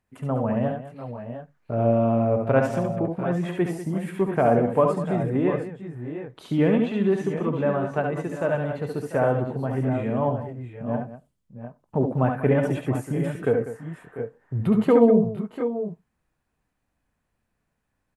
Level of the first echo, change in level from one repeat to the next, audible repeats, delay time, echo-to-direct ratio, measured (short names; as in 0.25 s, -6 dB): -4.5 dB, no steady repeat, 3, 69 ms, -2.5 dB